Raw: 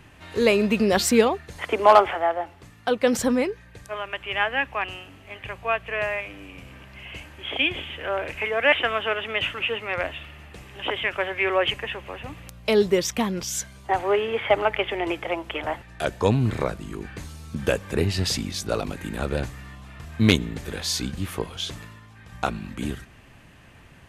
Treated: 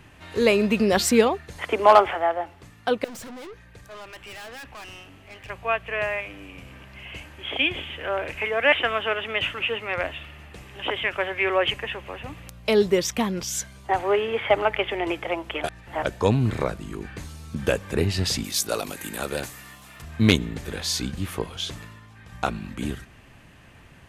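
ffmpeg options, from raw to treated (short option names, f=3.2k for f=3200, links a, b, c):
-filter_complex "[0:a]asettb=1/sr,asplit=3[a][b][c];[a]atrim=end=3.044[d];[b]atrim=start=3.04:end=5.5,asetpts=PTS-STARTPTS,afade=t=in:d=0.004:c=qsin,afade=t=out:st=2.456:d=0.004:c=qsin,aeval=exprs='(tanh(79.4*val(0)+0.25)-tanh(0.25))/79.4':c=same[e];[c]atrim=start=5.496[f];[d][e]acrossfade=d=0.004:c1=hsin:c2=qsin[g];[g][f]acrossfade=d=0.004:c1=qsin:c2=hsin,asettb=1/sr,asplit=3[h][i][j];[h]atrim=end=18.444[k];[i]atrim=start=18.44:end=20.02,asetpts=PTS-STARTPTS,afade=t=in:d=0.004:c=qsin,afade=t=out:st=1.576:d=0.004:c=qsin,aemphasis=mode=production:type=bsi[l];[j]atrim=start=20.016[m];[k][l]acrossfade=d=0.004:c1=hsin:c2=qsin[n];[n][m]acrossfade=d=0.004:c1=qsin:c2=hsin,asplit=3[o][p][q];[o]atrim=end=15.642[r];[p]atrim=start=15.638:end=16.052,asetpts=PTS-STARTPTS,areverse[s];[q]atrim=start=16.048[t];[r][s]acrossfade=d=0.004:c1=hsin:c2=hsin[u];[u][t]acrossfade=d=0.004:c1=hsin:c2=hsin"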